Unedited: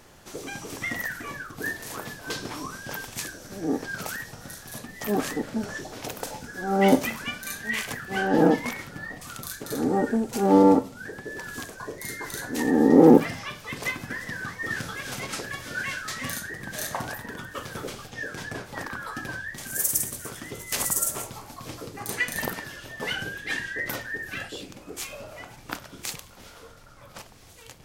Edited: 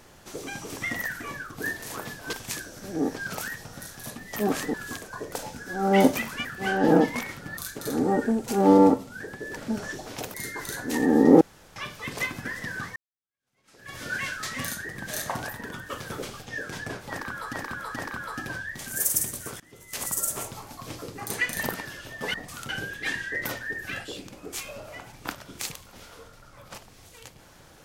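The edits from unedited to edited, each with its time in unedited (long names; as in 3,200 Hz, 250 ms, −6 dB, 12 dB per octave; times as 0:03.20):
0:02.33–0:03.01: remove
0:05.42–0:06.20: swap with 0:11.41–0:11.99
0:07.33–0:07.95: remove
0:09.07–0:09.42: move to 0:23.13
0:13.06–0:13.41: fill with room tone
0:14.61–0:15.61: fade in exponential
0:18.75–0:19.18: repeat, 3 plays
0:20.39–0:21.23: fade in, from −22 dB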